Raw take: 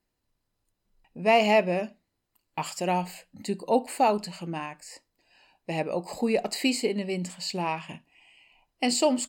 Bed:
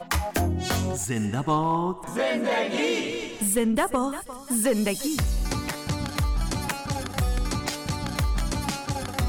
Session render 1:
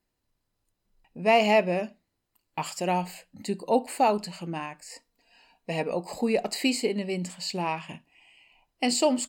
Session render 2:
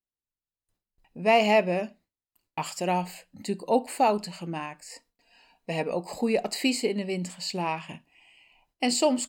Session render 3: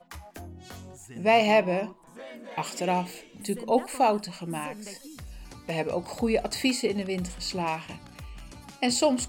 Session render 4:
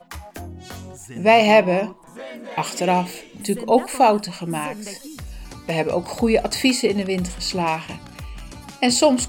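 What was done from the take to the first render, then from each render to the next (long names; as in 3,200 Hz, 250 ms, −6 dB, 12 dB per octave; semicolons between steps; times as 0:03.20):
0:04.89–0:05.93: comb filter 4.3 ms
noise gate with hold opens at −59 dBFS
mix in bed −18 dB
level +7.5 dB; brickwall limiter −3 dBFS, peak gain reduction 2 dB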